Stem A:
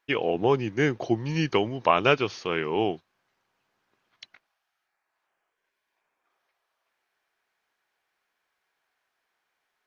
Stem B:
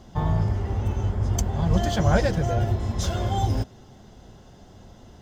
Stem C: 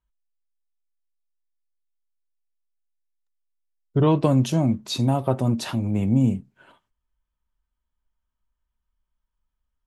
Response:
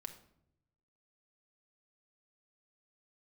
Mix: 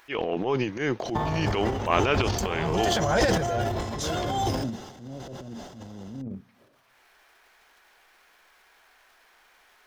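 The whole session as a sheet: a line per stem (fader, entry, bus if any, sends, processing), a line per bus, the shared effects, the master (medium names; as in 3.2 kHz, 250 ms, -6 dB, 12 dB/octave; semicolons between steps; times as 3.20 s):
-1.0 dB, 0.00 s, no send, none
+2.5 dB, 1.00 s, no send, bass shelf 230 Hz -6 dB
-14.0 dB, 0.00 s, send -23 dB, steep low-pass 620 Hz 48 dB/octave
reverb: on, RT60 0.75 s, pre-delay 5 ms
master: bass shelf 160 Hz -10 dB; upward compressor, threshold -42 dBFS; transient shaper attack -8 dB, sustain +10 dB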